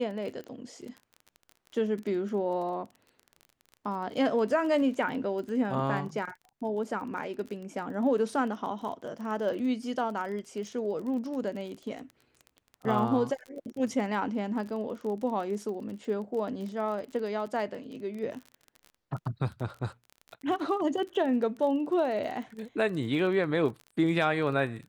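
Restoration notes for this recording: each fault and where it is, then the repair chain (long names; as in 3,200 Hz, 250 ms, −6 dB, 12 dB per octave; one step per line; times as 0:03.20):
surface crackle 27 per second −37 dBFS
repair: click removal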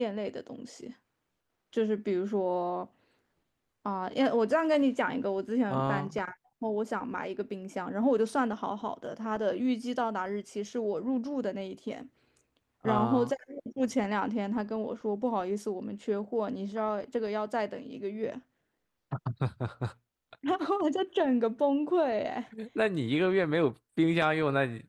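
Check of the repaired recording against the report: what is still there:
none of them is left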